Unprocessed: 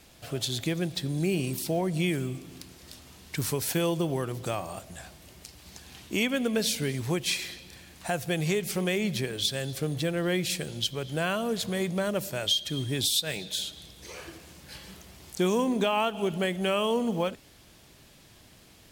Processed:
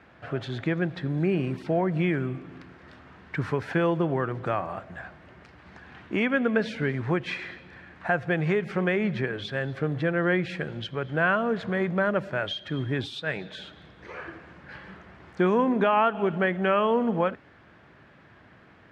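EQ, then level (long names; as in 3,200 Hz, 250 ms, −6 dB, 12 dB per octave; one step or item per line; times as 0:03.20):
high-pass filter 84 Hz
low-pass with resonance 1,600 Hz, resonance Q 2.3
+2.5 dB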